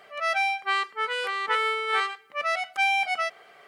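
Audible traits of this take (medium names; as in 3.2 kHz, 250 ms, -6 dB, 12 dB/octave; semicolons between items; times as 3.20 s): noise floor -53 dBFS; spectral tilt -2.0 dB/octave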